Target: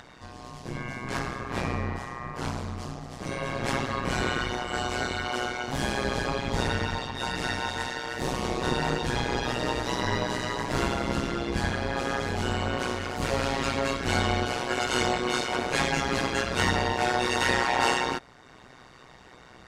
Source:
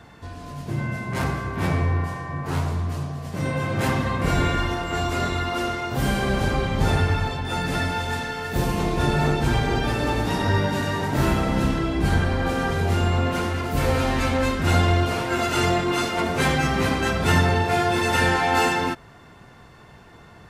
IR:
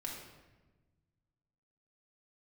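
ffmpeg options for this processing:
-af "lowpass=6400,bass=frequency=250:gain=-6,treble=frequency=4000:gain=7,acompressor=mode=upward:threshold=-41dB:ratio=2.5,tremolo=f=120:d=0.947,asetrate=45938,aresample=44100"

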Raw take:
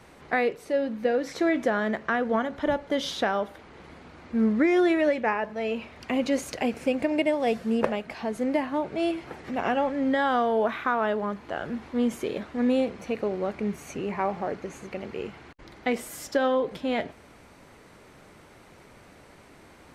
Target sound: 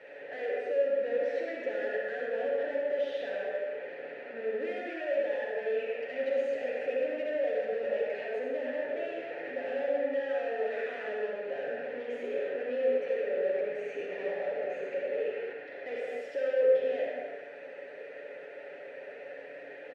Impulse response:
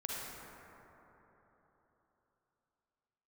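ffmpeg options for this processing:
-filter_complex "[0:a]aecho=1:1:7:0.58,asplit=2[link_01][link_02];[link_02]highpass=frequency=720:poles=1,volume=37dB,asoftclip=type=tanh:threshold=-7.5dB[link_03];[link_01][link_03]amix=inputs=2:normalize=0,lowpass=frequency=1400:poles=1,volume=-6dB,asplit=3[link_04][link_05][link_06];[link_04]bandpass=frequency=530:width_type=q:width=8,volume=0dB[link_07];[link_05]bandpass=frequency=1840:width_type=q:width=8,volume=-6dB[link_08];[link_06]bandpass=frequency=2480:width_type=q:width=8,volume=-9dB[link_09];[link_07][link_08][link_09]amix=inputs=3:normalize=0[link_10];[1:a]atrim=start_sample=2205,afade=type=out:start_time=0.38:duration=0.01,atrim=end_sample=17199[link_11];[link_10][link_11]afir=irnorm=-1:irlink=0,volume=-9dB"

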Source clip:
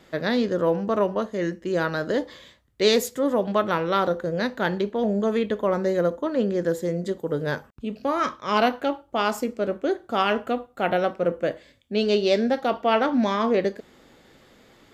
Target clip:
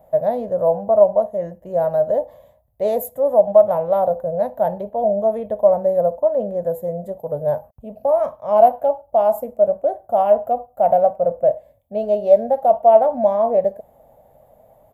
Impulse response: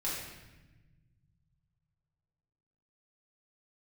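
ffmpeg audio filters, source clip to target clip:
-af "firequalizer=gain_entry='entry(110,0);entry(340,-18);entry(620,13);entry(1300,-18);entry(4700,-29);entry(12000,5)':delay=0.05:min_phase=1,volume=2.5dB"

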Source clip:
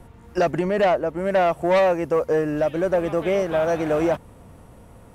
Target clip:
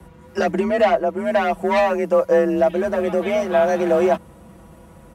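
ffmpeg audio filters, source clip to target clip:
ffmpeg -i in.wav -af "aecho=1:1:6.4:0.84,afreqshift=37" out.wav

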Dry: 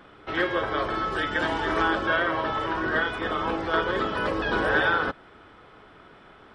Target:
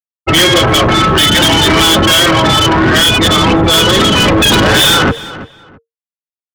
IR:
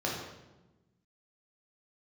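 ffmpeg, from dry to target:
-filter_complex "[0:a]anlmdn=6.31,afftfilt=real='re*gte(hypot(re,im),0.0355)':imag='im*gte(hypot(re,im),0.0355)':win_size=1024:overlap=0.75,highpass=91,bass=frequency=250:gain=14,treble=frequency=4000:gain=3,bandreject=frequency=460:width=13,areverse,acompressor=mode=upward:threshold=-39dB:ratio=2.5,areverse,aexciter=amount=6.4:drive=8.5:freq=2500,asoftclip=type=tanh:threshold=-28.5dB,asplit=2[link_01][link_02];[link_02]adelay=332,lowpass=frequency=3100:poles=1,volume=-21.5dB,asplit=2[link_03][link_04];[link_04]adelay=332,lowpass=frequency=3100:poles=1,volume=0.23[link_05];[link_01][link_03][link_05]amix=inputs=3:normalize=0,alimiter=level_in=33dB:limit=-1dB:release=50:level=0:latency=1,volume=-5dB"

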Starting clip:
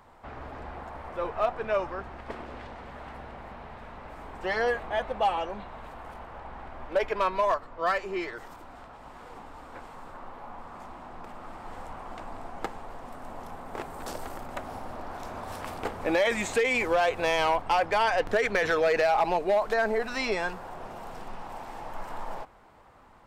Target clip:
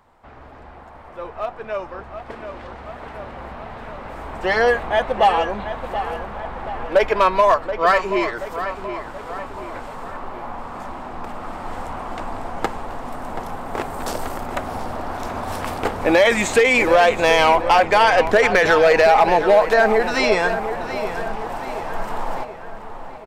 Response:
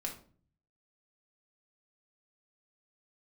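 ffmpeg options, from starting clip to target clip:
-filter_complex "[0:a]asplit=2[link_01][link_02];[link_02]adelay=729,lowpass=frequency=3600:poles=1,volume=-10.5dB,asplit=2[link_03][link_04];[link_04]adelay=729,lowpass=frequency=3600:poles=1,volume=0.53,asplit=2[link_05][link_06];[link_06]adelay=729,lowpass=frequency=3600:poles=1,volume=0.53,asplit=2[link_07][link_08];[link_08]adelay=729,lowpass=frequency=3600:poles=1,volume=0.53,asplit=2[link_09][link_10];[link_10]adelay=729,lowpass=frequency=3600:poles=1,volume=0.53,asplit=2[link_11][link_12];[link_12]adelay=729,lowpass=frequency=3600:poles=1,volume=0.53[link_13];[link_03][link_05][link_07][link_09][link_11][link_13]amix=inputs=6:normalize=0[link_14];[link_01][link_14]amix=inputs=2:normalize=0,dynaudnorm=framelen=930:gausssize=7:maxgain=13dB,volume=-1.5dB"

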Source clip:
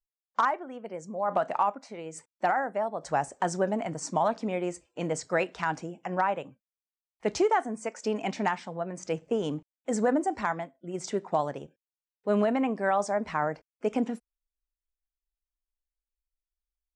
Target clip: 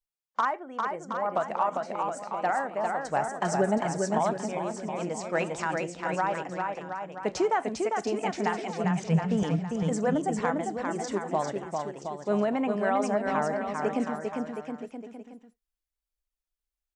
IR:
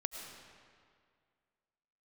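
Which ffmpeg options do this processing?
-filter_complex "[0:a]asettb=1/sr,asplit=3[link_01][link_02][link_03];[link_01]atrim=end=3.284[link_04];[link_02]atrim=start=3.28:end=3.78,asetpts=PTS-STARTPTS,afade=type=in:duration=0.004:curve=qsin,afade=type=out:start_time=0.496:duration=0.004:curve=qsin,aecho=1:1:4.8:0.94,atrim=end_sample=22050[link_05];[link_03]atrim=start=3.776[link_06];[link_04][link_05]acrossfade=duration=0.004:curve1=hsin:curve2=qsin[link_07];[link_07][link_06]acrossfade=duration=0.004:curve1=qsin:curve2=hsin,asettb=1/sr,asplit=3[link_08][link_09][link_10];[link_08]atrim=end=8.844[link_11];[link_09]atrim=start=8.84:end=9.43,asetpts=PTS-STARTPTS,afade=type=in:duration=0.004:curve=qsin,afade=type=out:start_time=0.586:duration=0.004:curve=qsin,lowshelf=frequency=230:width_type=q:width=3:gain=11[link_12];[link_10]atrim=start=9.426[link_13];[link_11][link_12]acrossfade=duration=0.004:curve1=hsin:curve2=qsin[link_14];[link_14][link_13]acrossfade=duration=0.004:curve1=qsin:curve2=hsin,aecho=1:1:400|720|976|1181|1345:0.631|0.398|0.251|0.158|0.1[link_15];[1:a]atrim=start_sample=2205,atrim=end_sample=3528[link_16];[link_15][link_16]afir=irnorm=-1:irlink=0,asplit=3[link_17][link_18][link_19];[link_17]afade=type=out:start_time=4.32:duration=0.02[link_20];[link_18]acompressor=threshold=-30dB:ratio=2,afade=type=in:start_time=4.32:duration=0.02,afade=type=out:start_time=5.33:duration=0.02[link_21];[link_19]afade=type=in:start_time=5.33:duration=0.02[link_22];[link_20][link_21][link_22]amix=inputs=3:normalize=0"

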